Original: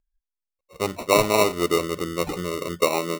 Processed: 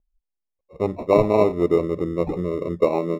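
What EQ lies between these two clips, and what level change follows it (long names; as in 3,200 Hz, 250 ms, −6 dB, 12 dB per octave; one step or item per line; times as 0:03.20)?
moving average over 29 samples
+5.0 dB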